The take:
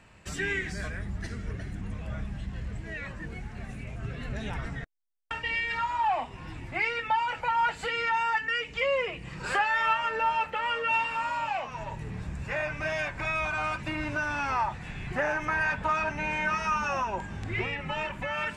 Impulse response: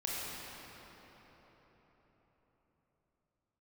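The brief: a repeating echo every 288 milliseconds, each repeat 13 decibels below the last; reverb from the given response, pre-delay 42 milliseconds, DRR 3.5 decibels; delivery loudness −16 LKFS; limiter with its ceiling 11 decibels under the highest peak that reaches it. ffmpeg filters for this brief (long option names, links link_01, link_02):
-filter_complex "[0:a]alimiter=level_in=1dB:limit=-24dB:level=0:latency=1,volume=-1dB,aecho=1:1:288|576|864:0.224|0.0493|0.0108,asplit=2[link_01][link_02];[1:a]atrim=start_sample=2205,adelay=42[link_03];[link_02][link_03]afir=irnorm=-1:irlink=0,volume=-8dB[link_04];[link_01][link_04]amix=inputs=2:normalize=0,volume=16dB"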